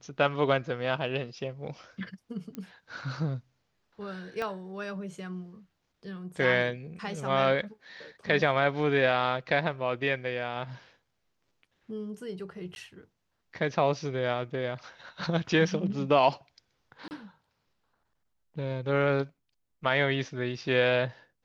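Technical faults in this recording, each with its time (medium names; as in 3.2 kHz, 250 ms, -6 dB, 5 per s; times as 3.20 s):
2.55 s: pop -24 dBFS
4.42 s: pop -21 dBFS
12.75–12.76 s: dropout 11 ms
17.08–17.11 s: dropout 29 ms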